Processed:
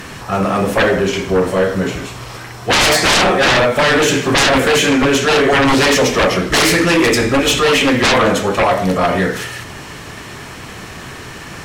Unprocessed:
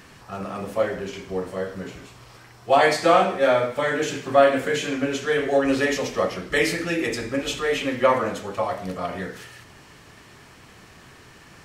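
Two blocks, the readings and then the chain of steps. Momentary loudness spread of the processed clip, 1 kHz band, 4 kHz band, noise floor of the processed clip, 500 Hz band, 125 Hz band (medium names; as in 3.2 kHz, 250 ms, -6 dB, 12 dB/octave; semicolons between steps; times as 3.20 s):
19 LU, +8.0 dB, +16.5 dB, -32 dBFS, +7.0 dB, +14.5 dB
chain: band-stop 4.7 kHz, Q 21; sine folder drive 18 dB, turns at -3.5 dBFS; trim -5 dB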